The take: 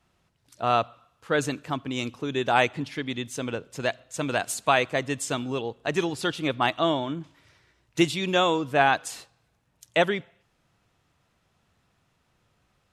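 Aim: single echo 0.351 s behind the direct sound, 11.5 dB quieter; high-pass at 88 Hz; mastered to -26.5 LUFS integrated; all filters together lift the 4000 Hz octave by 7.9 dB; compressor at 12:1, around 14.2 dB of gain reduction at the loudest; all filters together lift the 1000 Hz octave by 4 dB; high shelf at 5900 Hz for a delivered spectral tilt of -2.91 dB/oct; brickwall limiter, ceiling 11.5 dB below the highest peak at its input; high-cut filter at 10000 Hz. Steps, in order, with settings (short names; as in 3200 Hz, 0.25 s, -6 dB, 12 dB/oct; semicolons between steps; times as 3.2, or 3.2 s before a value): HPF 88 Hz; LPF 10000 Hz; bell 1000 Hz +5 dB; bell 4000 Hz +7 dB; high shelf 5900 Hz +8.5 dB; compressor 12:1, threshold -26 dBFS; limiter -21.5 dBFS; echo 0.351 s -11.5 dB; gain +7.5 dB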